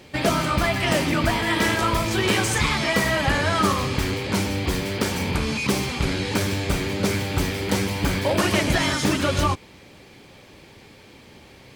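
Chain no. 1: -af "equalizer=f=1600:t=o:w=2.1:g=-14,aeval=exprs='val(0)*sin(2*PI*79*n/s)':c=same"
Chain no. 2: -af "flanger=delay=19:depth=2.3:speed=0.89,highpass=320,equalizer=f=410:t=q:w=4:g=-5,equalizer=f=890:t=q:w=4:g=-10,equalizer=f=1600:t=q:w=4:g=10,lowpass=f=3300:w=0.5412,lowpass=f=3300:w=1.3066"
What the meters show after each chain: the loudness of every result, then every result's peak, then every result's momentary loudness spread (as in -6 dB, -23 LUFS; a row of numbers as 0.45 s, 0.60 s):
-29.5 LUFS, -26.0 LUFS; -10.0 dBFS, -11.0 dBFS; 3 LU, 9 LU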